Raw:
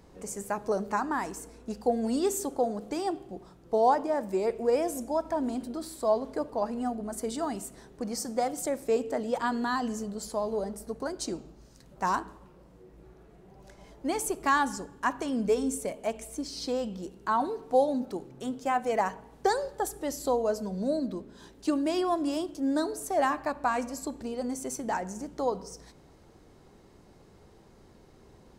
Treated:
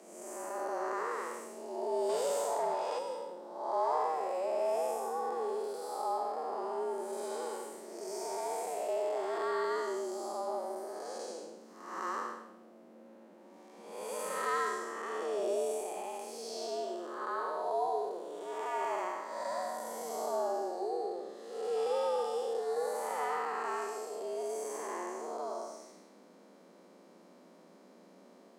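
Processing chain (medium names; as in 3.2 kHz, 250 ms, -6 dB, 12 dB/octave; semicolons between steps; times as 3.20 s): spectral blur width 330 ms; flange 0.2 Hz, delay 5.9 ms, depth 7.2 ms, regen -65%; 2.09–2.99 s: overdrive pedal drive 15 dB, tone 3.4 kHz, clips at -25.5 dBFS; frequency shift +170 Hz; trim +3.5 dB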